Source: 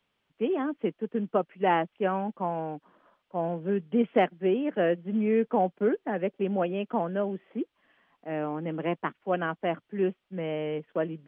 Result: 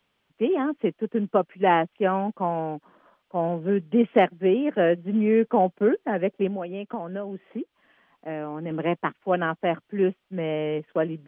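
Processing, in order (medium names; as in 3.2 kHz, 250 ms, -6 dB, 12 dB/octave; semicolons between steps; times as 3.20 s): 6.47–8.71 s: compression 6:1, threshold -33 dBFS, peak gain reduction 10.5 dB; trim +4.5 dB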